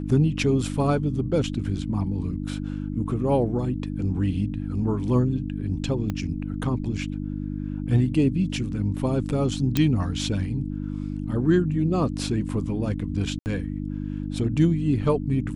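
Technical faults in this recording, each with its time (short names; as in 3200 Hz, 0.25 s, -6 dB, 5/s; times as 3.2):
hum 50 Hz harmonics 6 -30 dBFS
6.1 pop -16 dBFS
9.77 pop -8 dBFS
13.39–13.46 gap 69 ms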